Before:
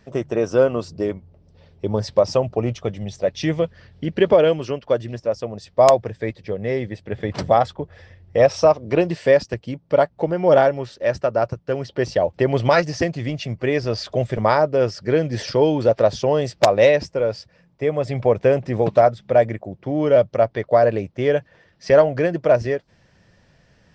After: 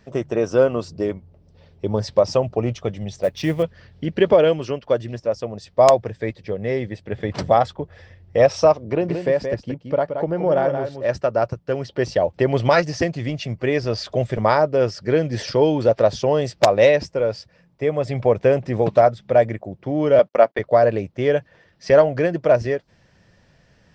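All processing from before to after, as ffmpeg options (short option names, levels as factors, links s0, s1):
-filter_complex "[0:a]asettb=1/sr,asplit=3[s0][s1][s2];[s0]atrim=end=3.234[s3];[s1]atrim=start=3.23:end=3.63,asetpts=PTS-STARTPTS,afade=t=in:d=0.004:c=qsin,afade=t=out:st=0.396:d=0.004:c=qsin,adynamicsmooth=sensitivity=3.5:basefreq=4800,acrusher=bits=8:mode=log:mix=0:aa=0.000001[s4];[s2]atrim=start=3.626[s5];[s3][s4]acrossfade=d=0.004:c1=hsin:c2=qsin[s6];[s6][s5]acrossfade=d=0.004:c1=qsin:c2=hsin,asettb=1/sr,asplit=3[s7][s8][s9];[s7]atrim=end=8.834[s10];[s8]atrim=start=8.83:end=11.09,asetpts=PTS-STARTPTS,afade=t=in:d=0.004:c=qsin,afade=t=out:st=2.256:d=0.004:c=qsin,highshelf=f=2100:g=-8,acompressor=threshold=0.141:ratio=2:attack=3.2:release=140:knee=1:detection=peak,aecho=1:1:175:0.447,atrim=end_sample=99666[s11];[s9]atrim=start=11.086[s12];[s10][s11]acrossfade=d=0.004:c1=hsin:c2=qsin[s13];[s13][s12]acrossfade=d=0.004:c1=qsin:c2=hsin,asettb=1/sr,asplit=3[s14][s15][s16];[s14]atrim=end=20.194[s17];[s15]atrim=start=20.19:end=20.59,asetpts=PTS-STARTPTS,afade=t=in:d=0.004:c=qsin,afade=t=out:st=0.396:d=0.004:c=qsin,highpass=f=200:w=0.5412,highpass=f=200:w=1.3066,agate=range=0.0251:threshold=0.0158:ratio=16:release=100:detection=peak,equalizer=f=1500:t=o:w=2.7:g=6[s18];[s16]atrim=start=20.586[s19];[s17][s18]acrossfade=d=0.004:c1=hsin:c2=qsin[s20];[s20][s19]acrossfade=d=0.004:c1=qsin:c2=hsin"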